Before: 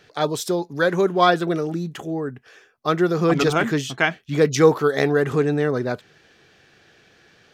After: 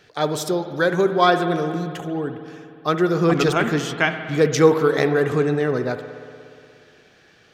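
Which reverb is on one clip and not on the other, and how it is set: spring tank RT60 2.5 s, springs 59 ms, chirp 45 ms, DRR 8.5 dB

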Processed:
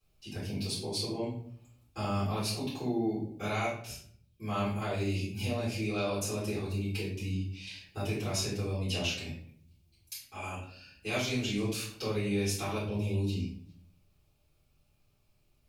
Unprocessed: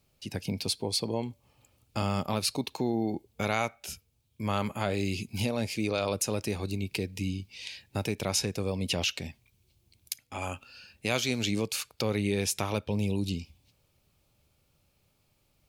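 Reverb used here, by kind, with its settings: simulated room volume 77 m³, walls mixed, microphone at 3.8 m; trim -17.5 dB

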